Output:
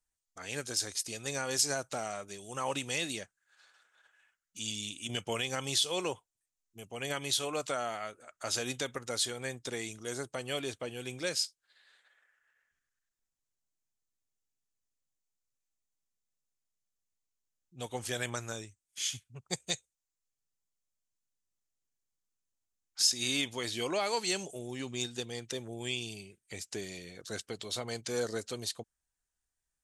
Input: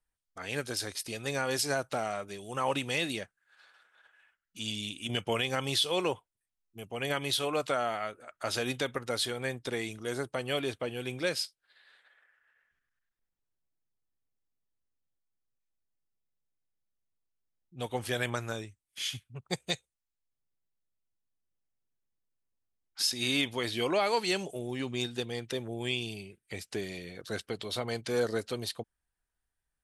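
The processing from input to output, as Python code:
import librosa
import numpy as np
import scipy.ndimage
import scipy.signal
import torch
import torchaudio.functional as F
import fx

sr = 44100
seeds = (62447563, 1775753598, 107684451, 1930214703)

y = fx.peak_eq(x, sr, hz=6900.0, db=12.5, octaves=0.86)
y = y * librosa.db_to_amplitude(-4.5)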